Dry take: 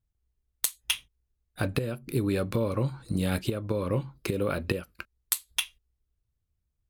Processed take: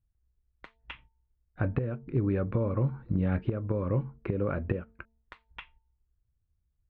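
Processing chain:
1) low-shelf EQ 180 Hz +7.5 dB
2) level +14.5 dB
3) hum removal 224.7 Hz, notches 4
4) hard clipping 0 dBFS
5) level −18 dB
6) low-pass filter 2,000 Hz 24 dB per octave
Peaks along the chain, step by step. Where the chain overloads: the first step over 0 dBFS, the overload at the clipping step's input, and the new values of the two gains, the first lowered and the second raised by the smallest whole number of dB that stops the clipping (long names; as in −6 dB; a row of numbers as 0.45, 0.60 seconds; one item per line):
−8.5, +6.0, +6.0, 0.0, −18.0, −18.0 dBFS
step 2, 6.0 dB
step 2 +8.5 dB, step 5 −12 dB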